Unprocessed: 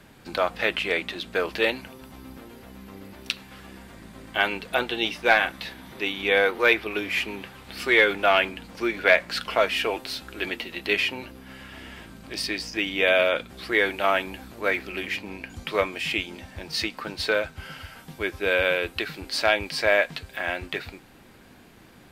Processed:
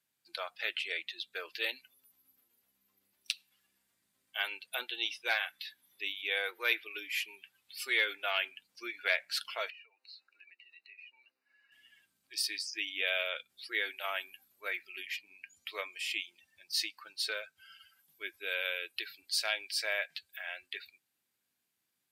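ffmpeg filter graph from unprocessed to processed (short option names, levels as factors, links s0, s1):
-filter_complex "[0:a]asettb=1/sr,asplit=3[s0][s1][s2];[s0]atrim=end=9.704[s3];[s1]atrim=start=9.7:end=11.72,asetpts=PTS-STARTPTS,afade=t=in:d=0.004:c=qsin,afade=t=out:st=2.016:d=0.004:c=qsin,acrossover=split=310 4400:gain=0.0708 1 0.0891[s4][s5][s6];[s4][s5][s6]amix=inputs=3:normalize=0,acompressor=threshold=0.0112:ratio=6:attack=3.2:release=140:knee=1:detection=peak,asuperstop=centerf=3300:order=8:qfactor=4.4[s7];[s2]atrim=start=11.716[s8];[s3][s7]acrossfade=d=0.004:c1=hsin:c2=qsin[s9];[s9][s8]acrossfade=d=0.004:c1=qsin:c2=hsin,aderivative,afftdn=nr=21:nf=-47,equalizer=f=100:w=0.42:g=14.5"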